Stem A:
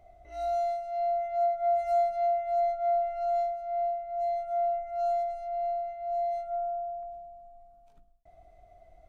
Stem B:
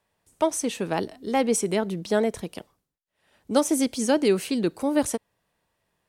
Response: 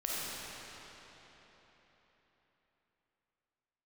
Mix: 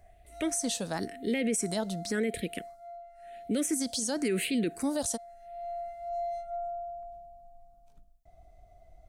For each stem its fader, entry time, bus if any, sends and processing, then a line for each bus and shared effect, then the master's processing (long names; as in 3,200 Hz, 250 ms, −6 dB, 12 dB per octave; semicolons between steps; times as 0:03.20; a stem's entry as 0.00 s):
−4.0 dB, 0.00 s, no send, bass and treble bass +7 dB, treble +8 dB; automatic ducking −15 dB, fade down 0.90 s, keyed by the second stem
−1.5 dB, 0.00 s, no send, all-pass phaser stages 4, 0.94 Hz, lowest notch 360–1,000 Hz; graphic EQ with 10 bands 125 Hz −3 dB, 250 Hz +4 dB, 500 Hz +8 dB, 1,000 Hz −10 dB, 2,000 Hz +8 dB, 4,000 Hz +9 dB, 8,000 Hz +6 dB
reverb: not used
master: brickwall limiter −21.5 dBFS, peak gain reduction 11.5 dB